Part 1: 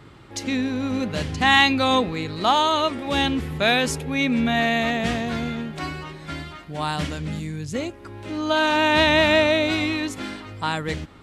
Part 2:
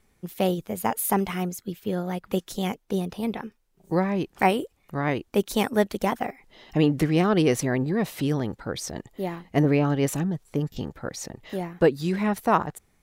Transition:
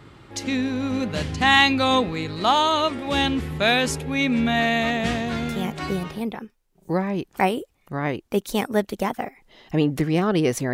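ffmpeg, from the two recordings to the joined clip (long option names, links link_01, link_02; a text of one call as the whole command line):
ffmpeg -i cue0.wav -i cue1.wav -filter_complex "[0:a]apad=whole_dur=10.73,atrim=end=10.73,atrim=end=6.21,asetpts=PTS-STARTPTS[link_01];[1:a]atrim=start=2.51:end=7.75,asetpts=PTS-STARTPTS[link_02];[link_01][link_02]acrossfade=duration=0.72:curve1=log:curve2=log" out.wav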